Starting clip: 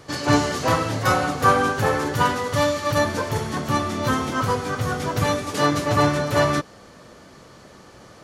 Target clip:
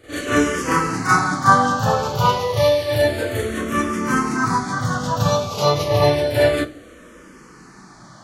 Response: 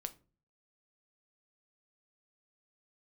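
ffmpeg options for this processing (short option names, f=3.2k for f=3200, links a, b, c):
-filter_complex "[0:a]asplit=2[a][b];[1:a]atrim=start_sample=2205,adelay=36[c];[b][c]afir=irnorm=-1:irlink=0,volume=10dB[d];[a][d]amix=inputs=2:normalize=0,asplit=2[e][f];[f]afreqshift=-0.3[g];[e][g]amix=inputs=2:normalize=1,volume=-3dB"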